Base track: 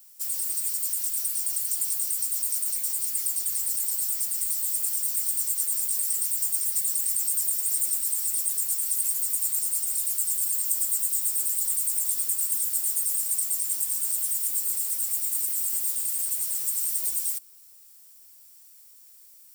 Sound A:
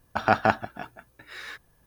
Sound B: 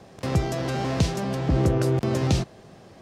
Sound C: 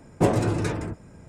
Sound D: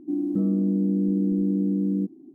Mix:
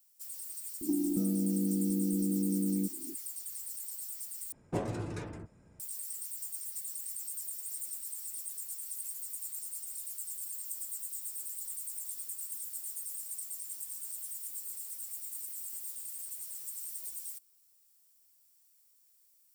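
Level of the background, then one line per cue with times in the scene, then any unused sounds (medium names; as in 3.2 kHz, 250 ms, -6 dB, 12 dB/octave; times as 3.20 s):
base track -14.5 dB
0.81 s: add D -8 dB + three bands compressed up and down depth 100%
4.52 s: replace with C -13.5 dB
not used: A, B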